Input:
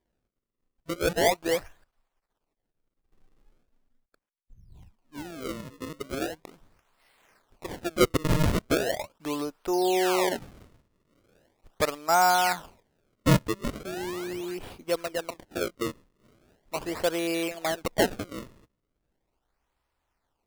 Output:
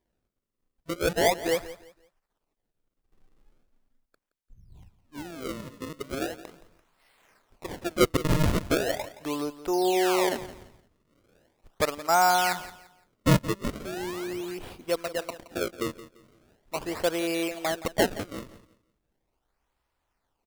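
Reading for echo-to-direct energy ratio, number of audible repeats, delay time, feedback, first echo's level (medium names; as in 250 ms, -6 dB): -15.5 dB, 2, 171 ms, 28%, -16.0 dB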